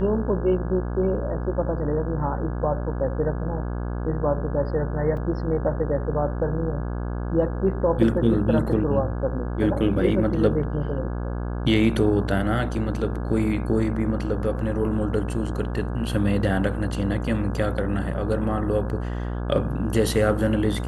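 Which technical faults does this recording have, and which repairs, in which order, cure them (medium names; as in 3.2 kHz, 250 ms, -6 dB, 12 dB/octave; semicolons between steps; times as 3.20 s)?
buzz 60 Hz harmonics 28 -28 dBFS
5.17 s: dropout 3.2 ms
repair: de-hum 60 Hz, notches 28; interpolate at 5.17 s, 3.2 ms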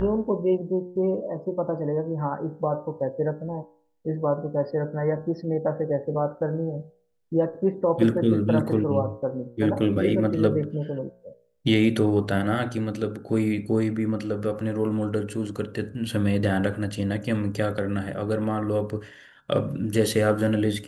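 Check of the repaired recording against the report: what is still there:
nothing left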